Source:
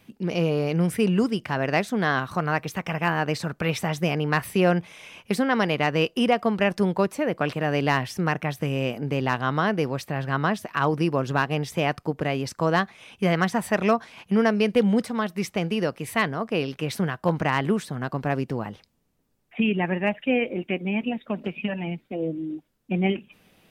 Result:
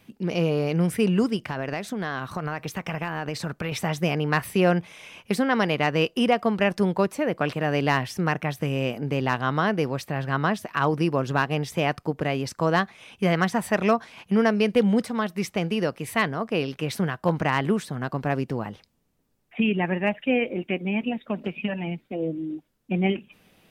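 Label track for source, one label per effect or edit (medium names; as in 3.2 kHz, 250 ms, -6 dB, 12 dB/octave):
1.360000	3.720000	compression 12:1, threshold -24 dBFS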